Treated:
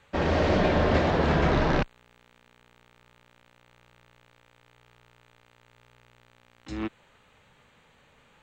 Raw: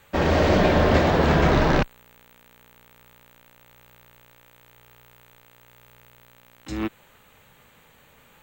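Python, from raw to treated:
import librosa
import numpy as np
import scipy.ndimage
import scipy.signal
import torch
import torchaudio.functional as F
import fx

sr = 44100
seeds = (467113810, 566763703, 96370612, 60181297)

y = scipy.signal.sosfilt(scipy.signal.butter(2, 6300.0, 'lowpass', fs=sr, output='sos'), x)
y = y * 10.0 ** (-4.5 / 20.0)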